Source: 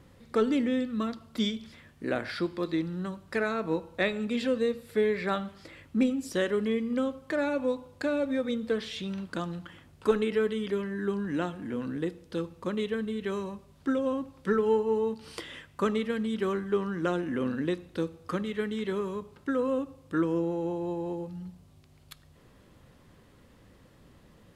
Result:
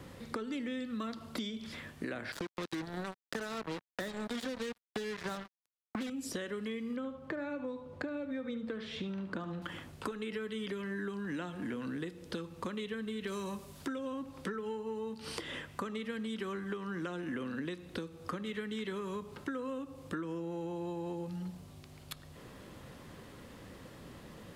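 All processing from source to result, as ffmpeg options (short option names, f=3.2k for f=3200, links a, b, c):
-filter_complex "[0:a]asettb=1/sr,asplit=3[a][b][c];[a]atrim=end=2.324[d];[b]atrim=start=2.32:end=6.1,asetpts=PTS-STARTPTS,afade=t=in:d=0.004:c=qsin,afade=t=out:st=3.776:d=0.004:c=qsin,asuperstop=centerf=2500:order=8:qfactor=2.3,acrusher=bits=4:mix=0:aa=0.5[e];[c]atrim=start=6.096[f];[d][e]acrossfade=d=0.004:c1=hsin:c2=qsin[g];[g][f]acrossfade=d=0.004:c1=qsin:c2=hsin,asettb=1/sr,asplit=3[h][i][j];[h]atrim=end=6.964[k];[i]atrim=start=6.96:end=9.62,asetpts=PTS-STARTPTS,afade=t=in:d=0.004:c=qsin,afade=t=out:st=2.656:d=0.004:c=qsin,lowpass=f=1.3k:p=1,aecho=1:1:72:0.251,atrim=end_sample=117306[l];[j]atrim=start=9.616[m];[k][l]acrossfade=d=0.004:c1=hsin:c2=qsin[n];[n][m]acrossfade=d=0.004:c1=qsin:c2=hsin,asettb=1/sr,asplit=3[o][p][q];[o]atrim=end=13.274[r];[p]atrim=start=13.27:end=13.88,asetpts=PTS-STARTPTS,afade=t=in:d=0.004:c=qsin,afade=t=out:st=0.606:d=0.004:c=qsin,aemphasis=mode=production:type=cd,acompressor=mode=upward:threshold=-55dB:ratio=2.5:attack=3.2:release=140:knee=2.83:detection=peak,asoftclip=type=hard:threshold=-26.5dB[s];[q]atrim=start=13.876[t];[r][s]acrossfade=d=0.004:c1=hsin:c2=qsin[u];[u][t]acrossfade=d=0.004:c1=qsin:c2=hsin,acompressor=threshold=-38dB:ratio=5,lowshelf=f=93:g=-8.5,acrossover=split=250|1100[v][w][x];[v]acompressor=threshold=-50dB:ratio=4[y];[w]acompressor=threshold=-50dB:ratio=4[z];[x]acompressor=threshold=-50dB:ratio=4[aa];[y][z][aa]amix=inputs=3:normalize=0,volume=8dB"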